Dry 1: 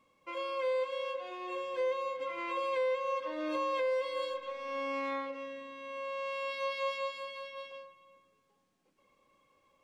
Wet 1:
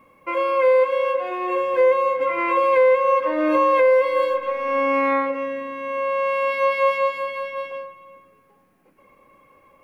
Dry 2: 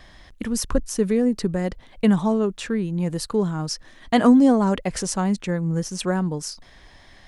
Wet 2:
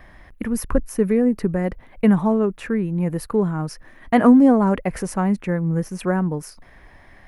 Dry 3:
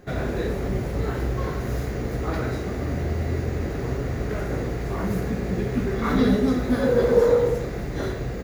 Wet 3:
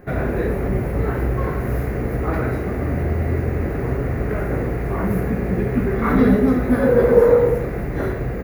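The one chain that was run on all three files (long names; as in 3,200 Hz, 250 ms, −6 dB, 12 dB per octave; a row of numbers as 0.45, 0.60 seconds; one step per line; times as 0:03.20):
flat-topped bell 5,100 Hz −13.5 dB
loudness normalisation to −20 LKFS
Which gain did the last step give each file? +16.0, +2.0, +5.0 decibels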